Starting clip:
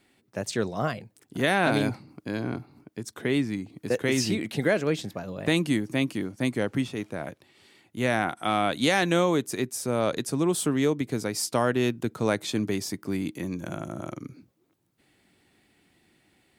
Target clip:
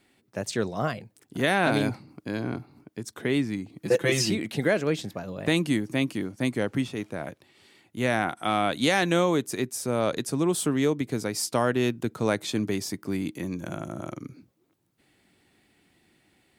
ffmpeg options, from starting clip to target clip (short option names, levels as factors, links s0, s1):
-filter_complex "[0:a]asettb=1/sr,asplit=3[s0][s1][s2];[s0]atrim=end=3.814[s3];[s1]atrim=start=3.81:end=4.3,asetpts=PTS-STARTPTS,afade=t=in:d=0.004:c=qsin,afade=t=out:st=0.486:d=0.004:c=qsin,aecho=1:1:5.9:0.87,atrim=end_sample=21609[s4];[s2]atrim=start=4.296[s5];[s3][s4]acrossfade=d=0.004:c1=hsin:c2=qsin[s6];[s6][s5]acrossfade=d=0.004:c1=qsin:c2=hsin"